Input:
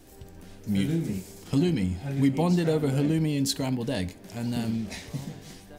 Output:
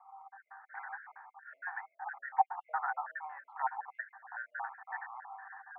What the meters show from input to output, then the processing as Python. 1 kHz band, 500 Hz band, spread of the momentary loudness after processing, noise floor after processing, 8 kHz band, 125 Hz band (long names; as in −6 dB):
+6.0 dB, −26.0 dB, 20 LU, −79 dBFS, below −40 dB, below −40 dB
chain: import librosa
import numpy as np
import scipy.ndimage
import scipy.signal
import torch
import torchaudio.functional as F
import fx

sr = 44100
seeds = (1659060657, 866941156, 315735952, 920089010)

y = fx.spec_dropout(x, sr, seeds[0], share_pct=45)
y = scipy.signal.sosfilt(scipy.signal.cheby1(5, 1.0, [760.0, 1800.0], 'bandpass', fs=sr, output='sos'), y)
y = y * 10.0 ** (11.0 / 20.0)